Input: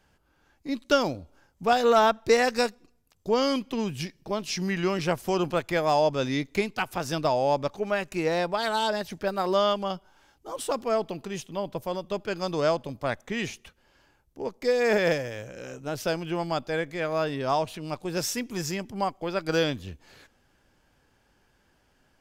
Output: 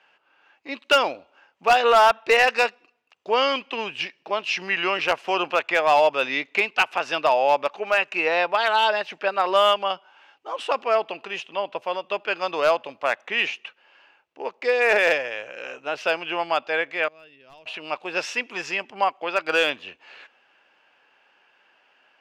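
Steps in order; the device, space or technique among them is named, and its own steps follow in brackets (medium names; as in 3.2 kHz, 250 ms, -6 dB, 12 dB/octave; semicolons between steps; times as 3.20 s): megaphone (band-pass 680–2800 Hz; peaking EQ 2.7 kHz +11 dB 0.31 oct; hard clipper -18.5 dBFS, distortion -17 dB); 17.08–17.66 s: amplifier tone stack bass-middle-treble 10-0-1; trim +8.5 dB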